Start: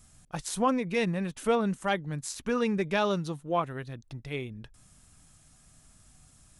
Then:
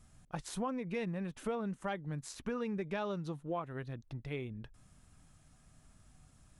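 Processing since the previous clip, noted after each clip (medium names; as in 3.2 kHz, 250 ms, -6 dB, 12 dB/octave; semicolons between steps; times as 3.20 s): treble shelf 3.6 kHz -10.5 dB; compression 4:1, threshold -33 dBFS, peak gain reduction 10.5 dB; trim -2 dB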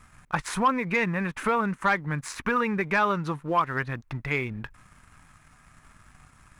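high-order bell 1.5 kHz +12 dB; waveshaping leveller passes 1; trim +5.5 dB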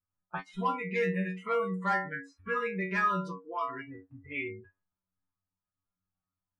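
inharmonic resonator 92 Hz, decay 0.59 s, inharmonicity 0.002; level-controlled noise filter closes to 840 Hz, open at -31.5 dBFS; spectral noise reduction 29 dB; trim +6 dB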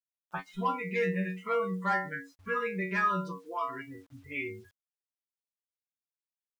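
bit crusher 11-bit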